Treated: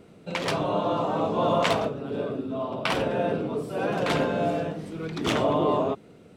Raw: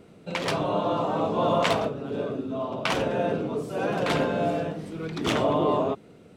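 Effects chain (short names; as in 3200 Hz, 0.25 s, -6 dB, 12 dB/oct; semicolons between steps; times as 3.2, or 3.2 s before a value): 1.99–3.92 bell 6500 Hz -7.5 dB 0.24 oct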